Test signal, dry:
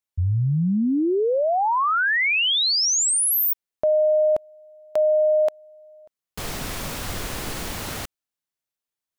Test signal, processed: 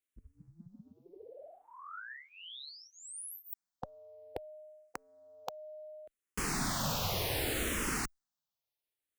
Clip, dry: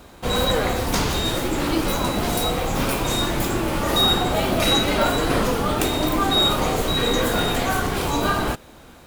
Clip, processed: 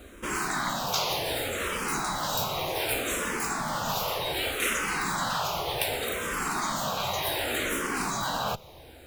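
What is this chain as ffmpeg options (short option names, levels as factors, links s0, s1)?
-filter_complex "[0:a]afftfilt=real='re*lt(hypot(re,im),0.251)':imag='im*lt(hypot(re,im),0.251)':win_size=1024:overlap=0.75,asplit=2[s0][s1];[s1]afreqshift=-0.66[s2];[s0][s2]amix=inputs=2:normalize=1"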